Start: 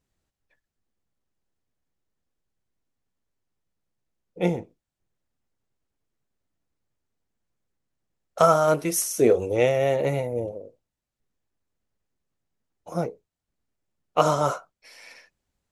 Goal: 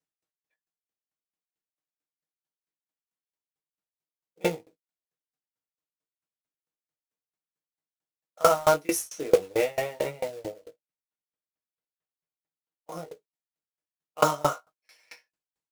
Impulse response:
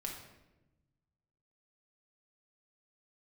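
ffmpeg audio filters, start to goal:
-filter_complex "[0:a]asettb=1/sr,asplit=3[a][b][c];[a]atrim=end=9.074[d];[b]atrim=start=9.07:end=12.92,asetpts=PTS-STARTPTS,afade=t=in:d=0.004:c=qsin,afade=t=out:st=3.846:d=0.004:c=qsin,lowpass=3.7k[e];[c]atrim=start=12.916[f];[d][e]acrossfade=d=0.004:c1=hsin:c2=qsin[g];[g][f]acrossfade=d=0.004:c1=qsin:c2=hsin,agate=range=-9dB:threshold=-47dB:ratio=16:detection=peak,highpass=f=460:p=1,aecho=1:1:6.4:0.51,acrusher=bits=3:mode=log:mix=0:aa=0.000001,flanger=delay=18:depth=2.5:speed=0.17,aeval=exprs='val(0)*pow(10,-27*if(lt(mod(4.5*n/s,1),2*abs(4.5)/1000),1-mod(4.5*n/s,1)/(2*abs(4.5)/1000),(mod(4.5*n/s,1)-2*abs(4.5)/1000)/(1-2*abs(4.5)/1000))/20)':c=same,volume=7.5dB"

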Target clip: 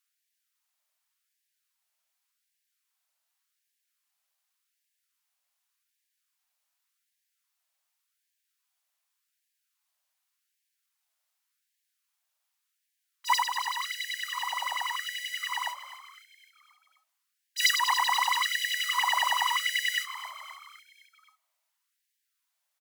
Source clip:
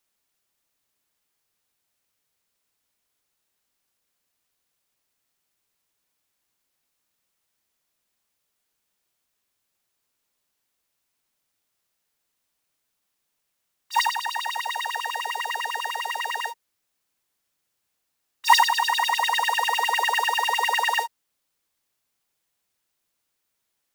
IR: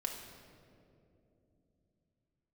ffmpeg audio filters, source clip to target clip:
-filter_complex "[0:a]asplit=6[a][b][c][d][e][f];[b]adelay=272,afreqshift=57,volume=-14dB[g];[c]adelay=544,afreqshift=114,volume=-19.4dB[h];[d]adelay=816,afreqshift=171,volume=-24.7dB[i];[e]adelay=1088,afreqshift=228,volume=-30.1dB[j];[f]adelay=1360,afreqshift=285,volume=-35.4dB[k];[a][g][h][i][j][k]amix=inputs=6:normalize=0,asetrate=46305,aresample=44100,asplit=2[l][m];[1:a]atrim=start_sample=2205[n];[m][n]afir=irnorm=-1:irlink=0,volume=-19dB[o];[l][o]amix=inputs=2:normalize=0,afftfilt=real='re*gte(b*sr/1024,540*pow(1600/540,0.5+0.5*sin(2*PI*0.87*pts/sr)))':imag='im*gte(b*sr/1024,540*pow(1600/540,0.5+0.5*sin(2*PI*0.87*pts/sr)))':win_size=1024:overlap=0.75,volume=-4dB"

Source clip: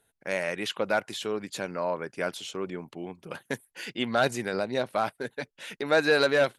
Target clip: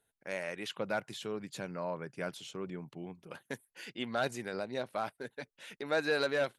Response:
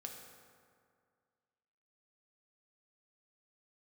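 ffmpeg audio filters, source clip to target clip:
-filter_complex "[0:a]asettb=1/sr,asplit=3[a][b][c];[a]atrim=end=0.694[d];[b]atrim=start=0.69:end=3.24,asetpts=PTS-STARTPTS,afade=t=in:d=0.004:c=qsin,afade=t=out:st=2.546:d=0.004:c=qsin,equalizer=f=140:w=1.6:g=10.5[e];[c]atrim=start=3.236[f];[d][e]acrossfade=d=0.004:c1=hsin:c2=qsin[g];[g][f]acrossfade=d=0.004:c1=qsin:c2=hsin,volume=-8.5dB"

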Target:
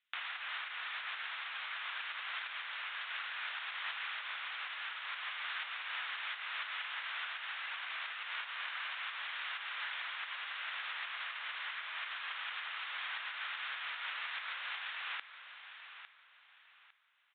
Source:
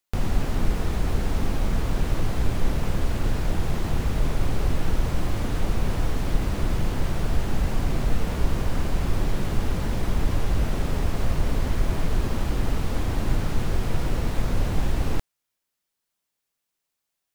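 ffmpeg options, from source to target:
-filter_complex "[0:a]aresample=8000,aresample=44100,asplit=2[a][b];[b]aecho=0:1:854|1708|2562:0.188|0.0527|0.0148[c];[a][c]amix=inputs=2:normalize=0,alimiter=limit=-17.5dB:level=0:latency=1:release=204,highpass=f=1.4k:w=0.5412,highpass=f=1.4k:w=1.3066,volume=5.5dB" -ar 48000 -c:a ac3 -b:a 64k

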